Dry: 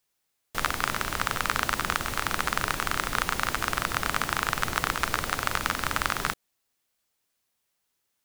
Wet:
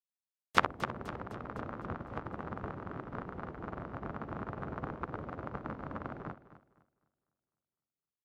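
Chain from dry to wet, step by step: HPF 82 Hz 12 dB/oct; treble ducked by the level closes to 580 Hz, closed at -26.5 dBFS; on a send: feedback echo 0.254 s, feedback 59%, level -6.5 dB; on the sum: upward expander 2.5:1, over -54 dBFS; gain +7.5 dB

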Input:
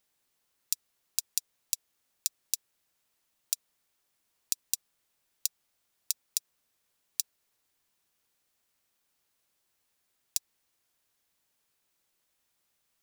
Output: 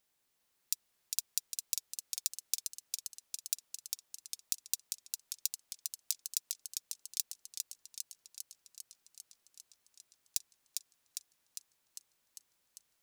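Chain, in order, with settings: level quantiser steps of 12 dB; warbling echo 0.401 s, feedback 73%, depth 85 cents, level -4 dB; gain +4.5 dB

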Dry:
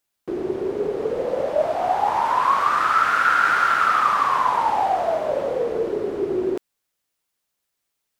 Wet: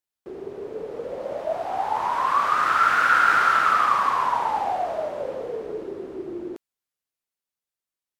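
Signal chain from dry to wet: Doppler pass-by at 3.24, 21 m/s, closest 21 m

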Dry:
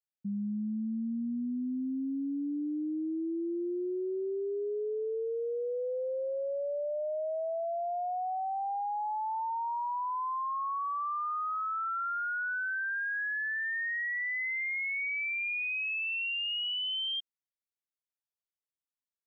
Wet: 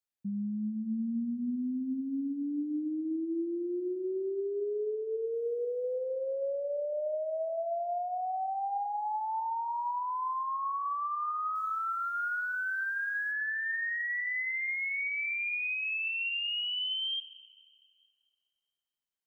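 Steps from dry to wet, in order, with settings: 5.34–5.96 high shelf 2200 Hz +9.5 dB; 11.55–13.32 companded quantiser 8-bit; plate-style reverb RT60 2.8 s, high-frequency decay 0.75×, DRR 13 dB

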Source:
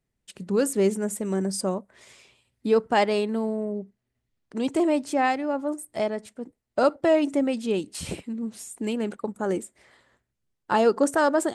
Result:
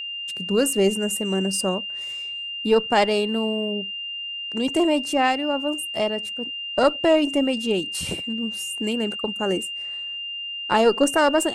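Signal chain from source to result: added harmonics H 2 -17 dB, 6 -39 dB, 8 -44 dB, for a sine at -9 dBFS; high shelf 8400 Hz +7 dB; whine 2800 Hz -31 dBFS; gain +2 dB

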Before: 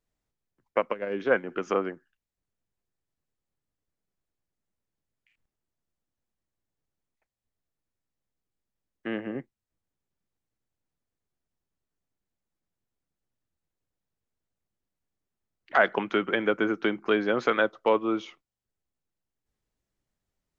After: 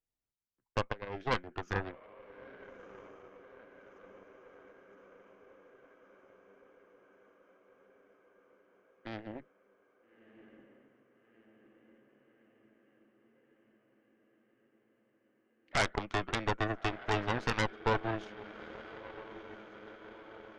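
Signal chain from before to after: diffused feedback echo 1.314 s, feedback 70%, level -12 dB; flange 0.89 Hz, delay 2.3 ms, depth 1.3 ms, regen -81%; added harmonics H 6 -6 dB, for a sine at -12 dBFS; gain -8 dB

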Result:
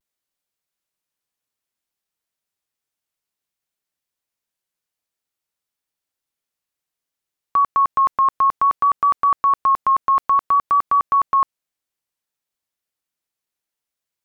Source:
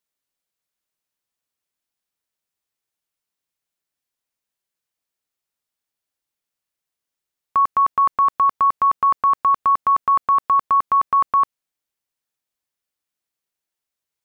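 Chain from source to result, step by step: vibrato 0.58 Hz 45 cents

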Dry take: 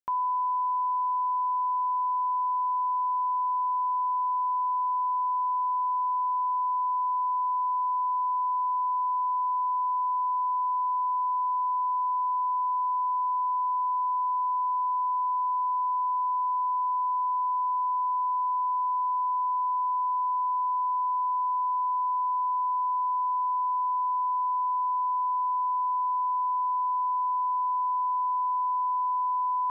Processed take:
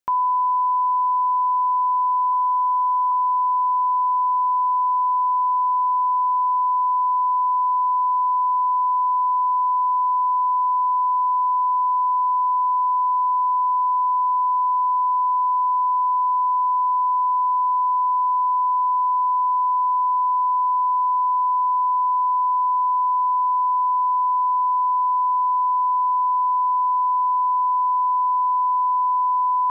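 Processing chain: 2.33–3.12 tilt +2.5 dB/oct; gain +7.5 dB

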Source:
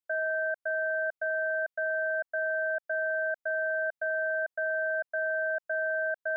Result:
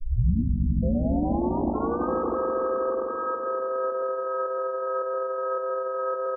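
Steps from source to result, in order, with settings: tape start at the beginning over 2.11 s; low shelf 480 Hz +8.5 dB; doubler 14 ms -5 dB; swelling echo 82 ms, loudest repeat 5, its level -9 dB; limiter -18 dBFS, peak gain reduction 7 dB; harmoniser -5 st -12 dB, +4 st -15 dB; bell 950 Hz -5.5 dB 2.3 oct; notches 60/120/180/240/300 Hz; loudest bins only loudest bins 64; pitch shift -3.5 st; gain +3.5 dB

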